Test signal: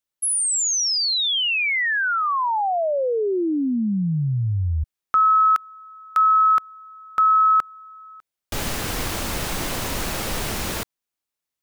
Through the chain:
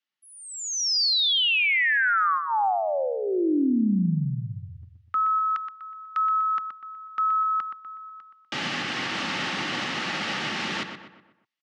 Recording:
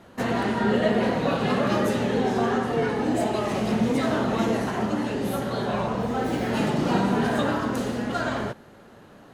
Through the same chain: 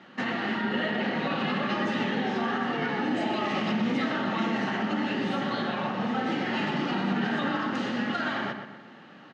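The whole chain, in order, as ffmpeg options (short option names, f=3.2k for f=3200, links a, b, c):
-filter_complex "[0:a]highpass=f=160:w=0.5412,highpass=f=160:w=1.3066,equalizer=f=450:t=q:w=4:g=-9,equalizer=f=660:t=q:w=4:g=-6,equalizer=f=1k:t=q:w=4:g=8,equalizer=f=1.9k:t=q:w=4:g=6,equalizer=f=2.9k:t=q:w=4:g=6,lowpass=f=5.3k:w=0.5412,lowpass=f=5.3k:w=1.3066,alimiter=limit=-19.5dB:level=0:latency=1:release=83,asuperstop=centerf=1000:order=4:qfactor=6,asplit=2[a][b];[b]adelay=123,lowpass=f=3k:p=1,volume=-7dB,asplit=2[c][d];[d]adelay=123,lowpass=f=3k:p=1,volume=0.46,asplit=2[e][f];[f]adelay=123,lowpass=f=3k:p=1,volume=0.46,asplit=2[g][h];[h]adelay=123,lowpass=f=3k:p=1,volume=0.46,asplit=2[i][j];[j]adelay=123,lowpass=f=3k:p=1,volume=0.46[k];[c][e][g][i][k]amix=inputs=5:normalize=0[l];[a][l]amix=inputs=2:normalize=0"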